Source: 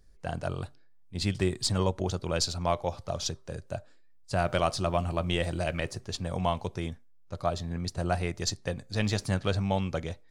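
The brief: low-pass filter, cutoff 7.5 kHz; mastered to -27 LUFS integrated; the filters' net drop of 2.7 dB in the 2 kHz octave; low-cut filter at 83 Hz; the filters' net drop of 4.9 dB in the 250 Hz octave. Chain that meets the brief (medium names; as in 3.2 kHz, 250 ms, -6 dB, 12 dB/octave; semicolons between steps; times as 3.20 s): high-pass 83 Hz; low-pass 7.5 kHz; peaking EQ 250 Hz -8 dB; peaking EQ 2 kHz -3.5 dB; trim +6.5 dB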